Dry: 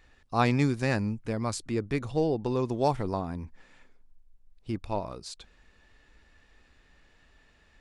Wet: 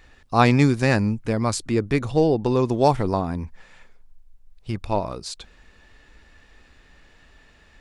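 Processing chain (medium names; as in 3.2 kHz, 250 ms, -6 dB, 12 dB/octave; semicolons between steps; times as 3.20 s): 3.44–4.81 s: peaking EQ 290 Hz -10.5 dB 0.64 oct; trim +8 dB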